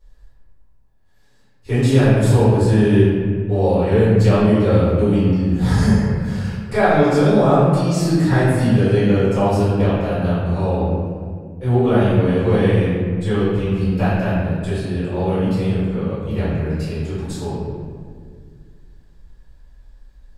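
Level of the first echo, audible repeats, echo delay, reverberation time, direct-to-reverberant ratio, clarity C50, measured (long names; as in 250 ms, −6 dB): no echo audible, no echo audible, no echo audible, 1.9 s, −14.0 dB, −2.5 dB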